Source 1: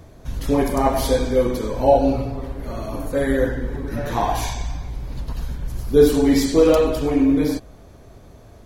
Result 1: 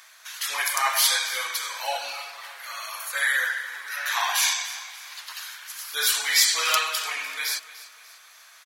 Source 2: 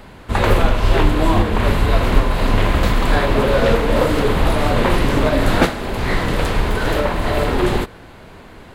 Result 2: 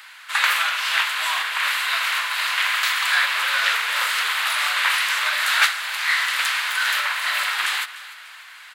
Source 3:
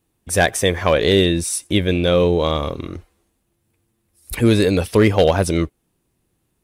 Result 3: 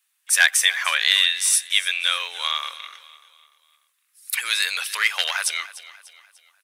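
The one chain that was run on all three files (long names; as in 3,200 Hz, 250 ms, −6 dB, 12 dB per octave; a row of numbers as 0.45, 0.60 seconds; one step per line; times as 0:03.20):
high-pass filter 1,400 Hz 24 dB per octave
repeating echo 296 ms, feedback 44%, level −17 dB
normalise the peak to −2 dBFS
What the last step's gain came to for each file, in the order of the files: +10.0, +6.0, +5.0 decibels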